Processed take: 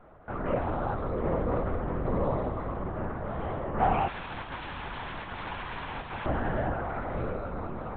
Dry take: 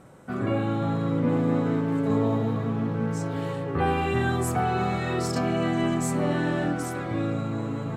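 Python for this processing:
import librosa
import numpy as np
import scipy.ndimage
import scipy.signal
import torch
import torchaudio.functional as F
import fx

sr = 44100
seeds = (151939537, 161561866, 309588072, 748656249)

y = fx.overflow_wrap(x, sr, gain_db=28.5, at=(4.07, 6.26))
y = fx.bandpass_q(y, sr, hz=850.0, q=0.91)
y = fx.lpc_vocoder(y, sr, seeds[0], excitation='whisper', order=8)
y = F.gain(torch.from_numpy(y), 2.5).numpy()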